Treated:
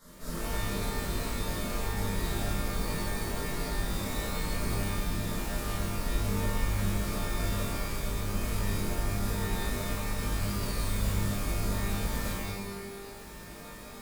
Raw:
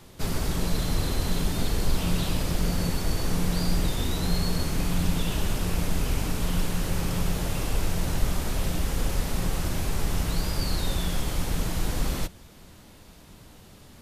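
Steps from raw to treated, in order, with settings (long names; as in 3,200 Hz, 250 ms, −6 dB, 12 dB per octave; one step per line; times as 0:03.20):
reversed playback
downward compressor 10 to 1, threshold −31 dBFS, peak gain reduction 16.5 dB
reversed playback
phaser with its sweep stopped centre 530 Hz, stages 8
reverb with rising layers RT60 1 s, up +12 semitones, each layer −2 dB, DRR −10.5 dB
level −6 dB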